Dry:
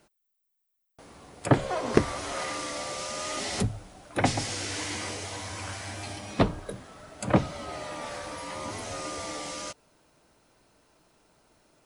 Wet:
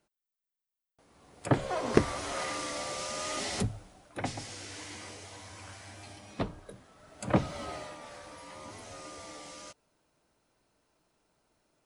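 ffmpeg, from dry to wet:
ffmpeg -i in.wav -af "volume=7.5dB,afade=type=in:start_time=1.07:duration=0.75:silence=0.266073,afade=type=out:start_time=3.42:duration=0.75:silence=0.375837,afade=type=in:start_time=6.96:duration=0.68:silence=0.334965,afade=type=out:start_time=7.64:duration=0.34:silence=0.354813" out.wav

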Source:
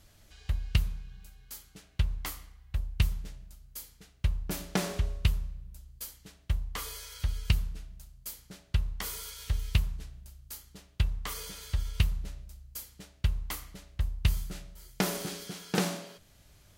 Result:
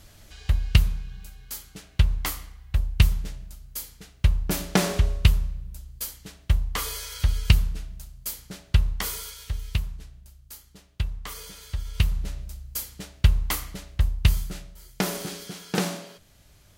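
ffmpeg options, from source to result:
ffmpeg -i in.wav -af "volume=18.5dB,afade=type=out:start_time=8.91:duration=0.56:silence=0.375837,afade=type=in:start_time=11.84:duration=0.63:silence=0.316228,afade=type=out:start_time=13.72:duration=1.01:silence=0.446684" out.wav

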